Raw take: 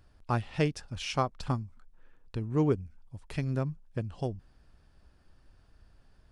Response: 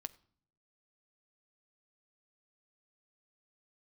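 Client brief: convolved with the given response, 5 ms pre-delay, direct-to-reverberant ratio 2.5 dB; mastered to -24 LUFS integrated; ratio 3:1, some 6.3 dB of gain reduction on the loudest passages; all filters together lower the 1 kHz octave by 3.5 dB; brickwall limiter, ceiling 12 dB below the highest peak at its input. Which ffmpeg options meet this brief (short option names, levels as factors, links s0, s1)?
-filter_complex "[0:a]equalizer=f=1000:t=o:g=-4.5,acompressor=threshold=0.0316:ratio=3,alimiter=level_in=2.37:limit=0.0631:level=0:latency=1,volume=0.422,asplit=2[s0][s1];[1:a]atrim=start_sample=2205,adelay=5[s2];[s1][s2]afir=irnorm=-1:irlink=0,volume=1.12[s3];[s0][s3]amix=inputs=2:normalize=0,volume=7.94"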